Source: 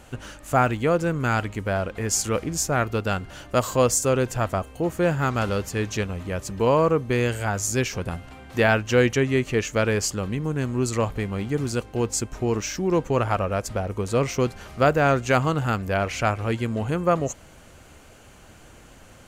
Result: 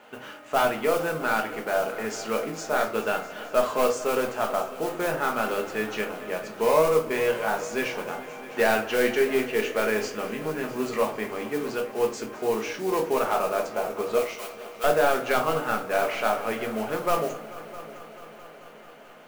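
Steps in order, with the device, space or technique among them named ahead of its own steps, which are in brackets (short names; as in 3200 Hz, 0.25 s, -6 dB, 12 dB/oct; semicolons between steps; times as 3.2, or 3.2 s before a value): carbon microphone (BPF 420–2900 Hz; soft clip -15 dBFS, distortion -14 dB; modulation noise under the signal 17 dB); 14.18–14.84 Bessel high-pass 2300 Hz; multi-head echo 0.219 s, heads all three, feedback 62%, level -20.5 dB; shoebox room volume 290 m³, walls furnished, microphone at 1.4 m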